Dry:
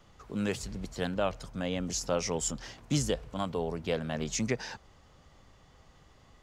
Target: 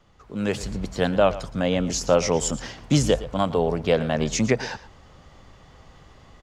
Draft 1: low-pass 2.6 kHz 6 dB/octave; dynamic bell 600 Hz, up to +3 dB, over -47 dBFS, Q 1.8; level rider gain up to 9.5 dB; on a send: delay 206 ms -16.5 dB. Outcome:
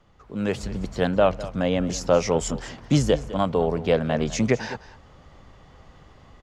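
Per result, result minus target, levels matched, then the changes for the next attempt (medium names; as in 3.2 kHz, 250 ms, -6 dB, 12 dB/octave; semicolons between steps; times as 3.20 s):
echo 90 ms late; 4 kHz band -2.5 dB
change: delay 116 ms -16.5 dB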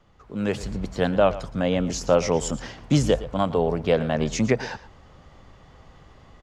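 4 kHz band -3.0 dB
change: low-pass 5.4 kHz 6 dB/octave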